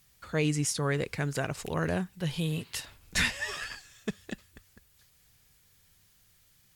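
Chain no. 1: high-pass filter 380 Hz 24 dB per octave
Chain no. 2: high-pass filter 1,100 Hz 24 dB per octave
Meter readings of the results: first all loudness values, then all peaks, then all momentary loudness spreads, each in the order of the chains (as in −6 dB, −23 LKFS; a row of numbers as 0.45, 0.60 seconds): −34.0, −35.0 LKFS; −13.5, −15.5 dBFS; 15, 18 LU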